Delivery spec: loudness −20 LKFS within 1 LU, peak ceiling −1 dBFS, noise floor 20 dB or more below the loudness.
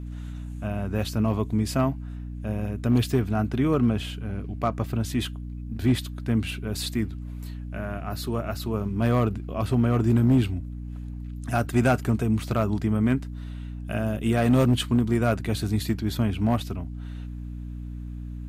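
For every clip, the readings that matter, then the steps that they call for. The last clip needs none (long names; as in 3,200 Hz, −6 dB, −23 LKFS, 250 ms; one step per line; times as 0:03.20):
share of clipped samples 0.4%; peaks flattened at −13.0 dBFS; mains hum 60 Hz; hum harmonics up to 300 Hz; level of the hum −32 dBFS; integrated loudness −25.5 LKFS; sample peak −13.0 dBFS; target loudness −20.0 LKFS
→ clipped peaks rebuilt −13 dBFS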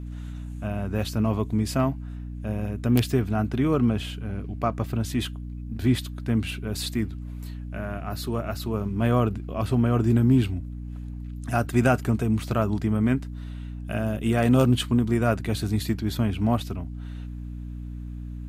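share of clipped samples 0.0%; mains hum 60 Hz; hum harmonics up to 300 Hz; level of the hum −32 dBFS
→ hum removal 60 Hz, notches 5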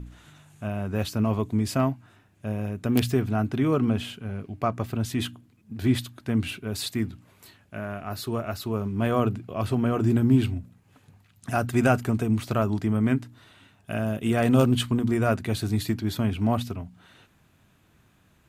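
mains hum none found; integrated loudness −26.0 LKFS; sample peak −4.0 dBFS; target loudness −20.0 LKFS
→ level +6 dB
brickwall limiter −1 dBFS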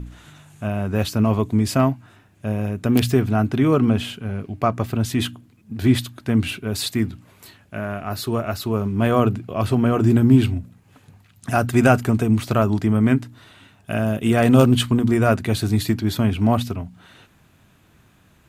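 integrated loudness −20.0 LKFS; sample peak −1.0 dBFS; background noise floor −56 dBFS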